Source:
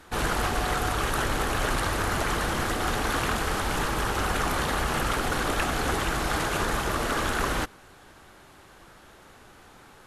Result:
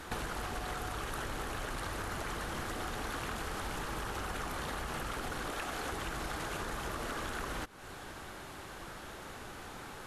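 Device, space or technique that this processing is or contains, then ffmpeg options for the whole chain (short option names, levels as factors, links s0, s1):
serial compression, leveller first: -filter_complex "[0:a]asettb=1/sr,asplit=3[s0][s1][s2];[s0]atrim=end=5.504[s3];[s1]atrim=start=5.5:end=5.92,asetpts=PTS-STARTPTS,afade=t=in:d=0.004:c=qsin,afade=t=out:st=0.416:d=0.004:c=qsin,bass=f=250:g=-7,treble=f=4000:g=0[s4];[s2]atrim=start=5.916[s5];[s3][s4]acrossfade=d=0.004:c1=hsin:c2=qsin[s6];[s6][s5]acrossfade=d=0.004:c1=qsin:c2=hsin,acompressor=threshold=0.0316:ratio=2,acompressor=threshold=0.00794:ratio=5,volume=1.78"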